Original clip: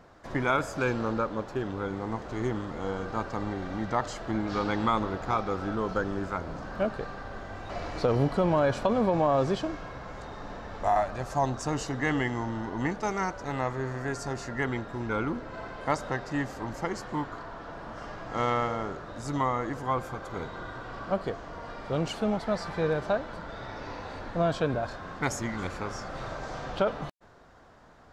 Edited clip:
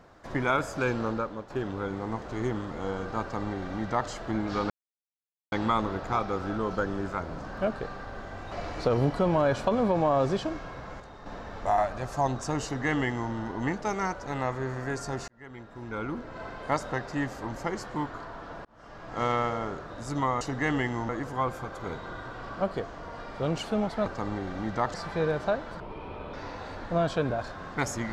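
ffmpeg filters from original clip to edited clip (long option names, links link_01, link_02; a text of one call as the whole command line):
ffmpeg -i in.wav -filter_complex "[0:a]asplit=13[link_01][link_02][link_03][link_04][link_05][link_06][link_07][link_08][link_09][link_10][link_11][link_12][link_13];[link_01]atrim=end=1.5,asetpts=PTS-STARTPTS,afade=type=out:start_time=1.06:duration=0.44:silence=0.354813[link_14];[link_02]atrim=start=1.5:end=4.7,asetpts=PTS-STARTPTS,afade=type=in:duration=0.004:curve=hsin:silence=0.354813,afade=type=out:start_time=3.196:duration=0.004:curve=hsin,apad=pad_dur=0.82[link_15];[link_03]atrim=start=4.7:end=10.182,asetpts=PTS-STARTPTS,afade=type=in:duration=0.004:curve=hsin[link_16];[link_04]atrim=start=10.178:end=10.442,asetpts=PTS-STARTPTS,volume=-6dB[link_17];[link_05]atrim=start=10.438:end=14.46,asetpts=PTS-STARTPTS,afade=type=out:start_time=4.018:duration=0.004:curve=hsin[link_18];[link_06]atrim=start=14.46:end=17.83,asetpts=PTS-STARTPTS,afade=type=in:duration=1.19,afade=type=out:start_time=3.366:duration=0.004:curve=hsin[link_19];[link_07]atrim=start=17.83:end=19.592,asetpts=PTS-STARTPTS,afade=type=in:duration=0.57[link_20];[link_08]atrim=start=11.818:end=12.502[link_21];[link_09]atrim=start=19.588:end=22.562[link_22];[link_10]atrim=start=3.208:end=4.092[link_23];[link_11]atrim=start=22.558:end=23.424[link_24];[link_12]atrim=start=23.42:end=23.78,asetpts=PTS-STARTPTS,asetrate=29547,aresample=44100[link_25];[link_13]atrim=start=23.776[link_26];[link_14][link_15][link_16]concat=n=3:v=0:a=1[link_27];[link_27][link_17]acrossfade=duration=0.004:curve1=hsin:curve2=hsin[link_28];[link_18][link_19][link_20]concat=n=3:v=0:a=1[link_29];[link_28][link_29]acrossfade=duration=0.004:curve1=hsin:curve2=hsin[link_30];[link_30][link_21]acrossfade=duration=0.004:curve1=hsin:curve2=hsin[link_31];[link_31][link_22]acrossfade=duration=0.004:curve1=hsin:curve2=hsin[link_32];[link_32][link_23]acrossfade=duration=0.004:curve1=hsin:curve2=hsin[link_33];[link_33][link_24]acrossfade=duration=0.004:curve1=hsin:curve2=hsin[link_34];[link_34][link_25]acrossfade=duration=0.004:curve1=hsin:curve2=hsin[link_35];[link_35][link_26]acrossfade=duration=0.004:curve1=hsin:curve2=hsin" out.wav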